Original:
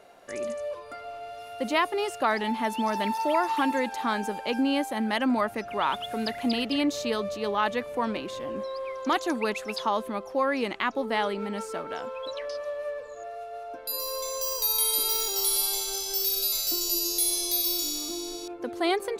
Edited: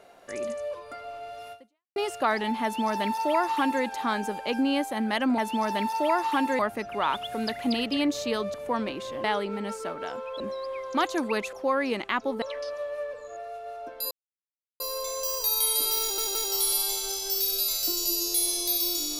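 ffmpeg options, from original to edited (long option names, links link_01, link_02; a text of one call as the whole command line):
ffmpeg -i in.wav -filter_complex "[0:a]asplit=12[link_01][link_02][link_03][link_04][link_05][link_06][link_07][link_08][link_09][link_10][link_11][link_12];[link_01]atrim=end=1.96,asetpts=PTS-STARTPTS,afade=type=out:start_time=1.52:duration=0.44:curve=exp[link_13];[link_02]atrim=start=1.96:end=5.382,asetpts=PTS-STARTPTS,afade=type=in:duration=0.004:curve=hsin[link_14];[link_03]atrim=start=2.628:end=3.842[link_15];[link_04]atrim=start=5.378:end=7.332[link_16];[link_05]atrim=start=7.818:end=8.522[link_17];[link_06]atrim=start=11.128:end=12.292[link_18];[link_07]atrim=start=8.518:end=9.652[link_19];[link_08]atrim=start=10.238:end=11.132[link_20];[link_09]atrim=start=12.288:end=13.98,asetpts=PTS-STARTPTS,afade=type=out:start_time=1.688:duration=0.004:curve=hsin,apad=pad_dur=0.69[link_21];[link_10]atrim=start=13.98:end=15.362,asetpts=PTS-STARTPTS,afade=type=in:duration=0.004:curve=hsin[link_22];[link_11]atrim=start=15.188:end=15.362[link_23];[link_12]atrim=start=15.188[link_24];[link_13][link_14]concat=n=2:v=0:a=1[link_25];[link_25][link_15]acrossfade=duration=0.004:curve1=hsin:curve2=hsin[link_26];[link_26][link_16]acrossfade=duration=0.004:curve1=hsin:curve2=hsin[link_27];[link_27][link_17]acrossfade=duration=0.004:curve1=hsin:curve2=hsin[link_28];[link_28][link_18]acrossfade=duration=0.004:curve1=hsin:curve2=hsin[link_29];[link_29][link_19]acrossfade=duration=0.004:curve1=hsin:curve2=hsin[link_30];[link_30][link_20]acrossfade=duration=0.004:curve1=hsin:curve2=hsin[link_31];[link_21][link_22]concat=n=2:v=0:a=1[link_32];[link_31][link_32]acrossfade=duration=0.004:curve1=hsin:curve2=hsin[link_33];[link_33][link_23]acrossfade=duration=0.004:curve1=hsin:curve2=hsin[link_34];[link_34][link_24]acrossfade=duration=0.004:curve1=hsin:curve2=hsin" out.wav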